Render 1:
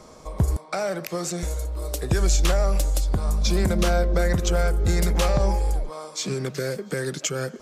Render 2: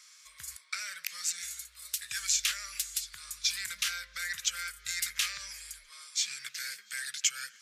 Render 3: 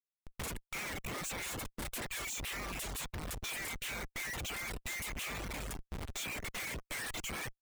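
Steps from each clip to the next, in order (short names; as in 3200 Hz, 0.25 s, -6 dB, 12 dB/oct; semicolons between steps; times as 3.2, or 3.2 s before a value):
inverse Chebyshev high-pass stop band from 860 Hz, stop band 40 dB
fixed phaser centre 1000 Hz, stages 8; Schmitt trigger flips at -46 dBFS; reverb removal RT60 0.56 s; gain +2.5 dB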